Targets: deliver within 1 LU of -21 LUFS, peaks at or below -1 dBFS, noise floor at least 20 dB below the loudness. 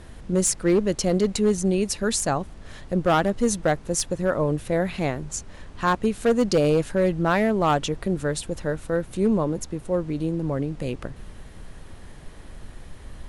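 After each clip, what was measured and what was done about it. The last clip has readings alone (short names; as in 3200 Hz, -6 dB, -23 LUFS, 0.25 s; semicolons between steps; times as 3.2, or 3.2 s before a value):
clipped 0.7%; flat tops at -13.5 dBFS; noise floor -43 dBFS; noise floor target -44 dBFS; loudness -24.0 LUFS; peak -13.5 dBFS; loudness target -21.0 LUFS
-> clip repair -13.5 dBFS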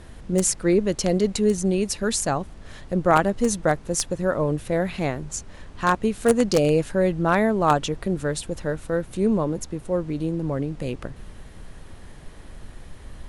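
clipped 0.0%; noise floor -43 dBFS; noise floor target -44 dBFS
-> noise print and reduce 6 dB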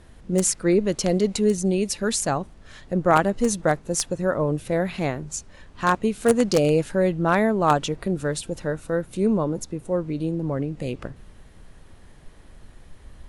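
noise floor -48 dBFS; loudness -23.5 LUFS; peak -4.5 dBFS; loudness target -21.0 LUFS
-> gain +2.5 dB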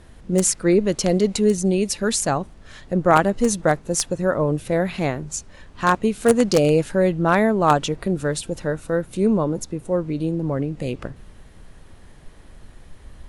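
loudness -21.0 LUFS; peak -2.0 dBFS; noise floor -46 dBFS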